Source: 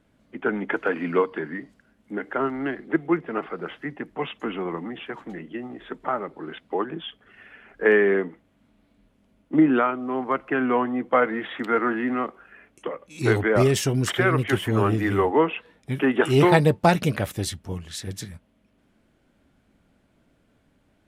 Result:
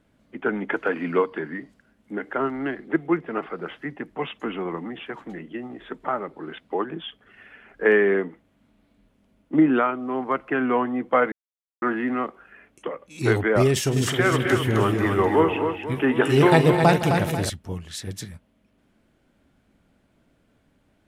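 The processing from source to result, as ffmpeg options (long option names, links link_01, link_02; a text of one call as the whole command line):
ffmpeg -i in.wav -filter_complex "[0:a]asettb=1/sr,asplit=3[link_01][link_02][link_03];[link_01]atrim=end=13.704[link_04];[link_02]atrim=start=13.7:end=17.5,asetpts=PTS-STARTPTS,afade=type=in:duration=0.004:curve=qsin,afade=type=out:start_time=3.796:duration=0.004:curve=qsin,aecho=1:1:43|161|210|261|489|745:0.2|0.133|0.211|0.473|0.188|0.133,atrim=end_sample=167580[link_05];[link_03]atrim=start=17.496[link_06];[link_04][link_05]acrossfade=duration=0.004:curve1=hsin:curve2=qsin[link_07];[link_07][link_06]acrossfade=duration=0.004:curve1=qsin:curve2=hsin,asplit=3[link_08][link_09][link_10];[link_08]atrim=end=11.32,asetpts=PTS-STARTPTS,afade=type=out:start_time=11.316:duration=0.004:curve=hsin[link_11];[link_09]atrim=start=11.32:end=11.82,asetpts=PTS-STARTPTS,volume=0[link_12];[link_10]atrim=start=11.82,asetpts=PTS-STARTPTS,afade=type=in:duration=0.004:curve=hsin[link_13];[link_11][link_12][link_13]concat=n=3:v=0:a=1" out.wav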